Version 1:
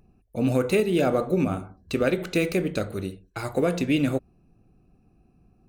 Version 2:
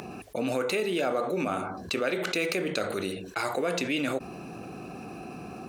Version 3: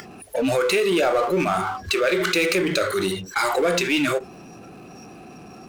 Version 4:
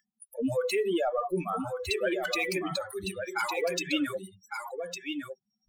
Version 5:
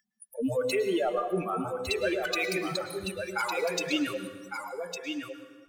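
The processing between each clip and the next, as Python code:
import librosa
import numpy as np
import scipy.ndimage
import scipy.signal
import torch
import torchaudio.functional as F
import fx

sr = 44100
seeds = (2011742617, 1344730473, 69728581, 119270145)

y1 = fx.weighting(x, sr, curve='A')
y1 = fx.env_flatten(y1, sr, amount_pct=70)
y1 = y1 * 10.0 ** (-4.0 / 20.0)
y2 = fx.noise_reduce_blind(y1, sr, reduce_db=20)
y2 = fx.power_curve(y2, sr, exponent=0.7)
y2 = y2 * 10.0 ** (4.0 / 20.0)
y3 = fx.bin_expand(y2, sr, power=3.0)
y3 = y3 + 10.0 ** (-6.5 / 20.0) * np.pad(y3, (int(1156 * sr / 1000.0), 0))[:len(y3)]
y3 = y3 * 10.0 ** (-3.0 / 20.0)
y4 = fx.rev_plate(y3, sr, seeds[0], rt60_s=1.4, hf_ratio=0.75, predelay_ms=95, drr_db=8.5)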